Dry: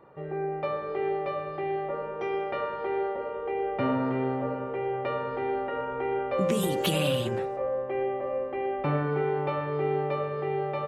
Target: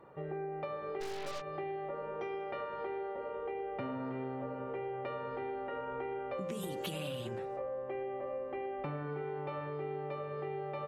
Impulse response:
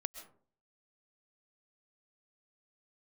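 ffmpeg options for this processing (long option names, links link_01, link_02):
-filter_complex "[1:a]atrim=start_sample=2205,atrim=end_sample=3528,asetrate=36162,aresample=44100[link_01];[0:a][link_01]afir=irnorm=-1:irlink=0,asplit=3[link_02][link_03][link_04];[link_02]afade=type=out:start_time=1:duration=0.02[link_05];[link_03]aeval=exprs='0.0501*(cos(1*acos(clip(val(0)/0.0501,-1,1)))-cos(1*PI/2))+0.0178*(cos(6*acos(clip(val(0)/0.0501,-1,1)))-cos(6*PI/2))':channel_layout=same,afade=type=in:start_time=1:duration=0.02,afade=type=out:start_time=1.4:duration=0.02[link_06];[link_04]afade=type=in:start_time=1.4:duration=0.02[link_07];[link_05][link_06][link_07]amix=inputs=3:normalize=0,acompressor=threshold=-35dB:ratio=6,volume=-1.5dB"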